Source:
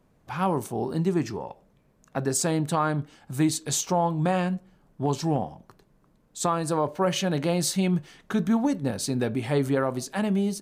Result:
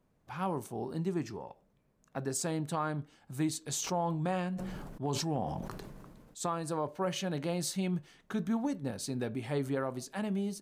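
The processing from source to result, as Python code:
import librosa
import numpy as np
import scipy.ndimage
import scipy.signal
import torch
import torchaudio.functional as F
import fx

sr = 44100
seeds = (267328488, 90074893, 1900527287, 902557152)

y = fx.sustainer(x, sr, db_per_s=28.0, at=(3.8, 6.41), fade=0.02)
y = y * librosa.db_to_amplitude(-9.0)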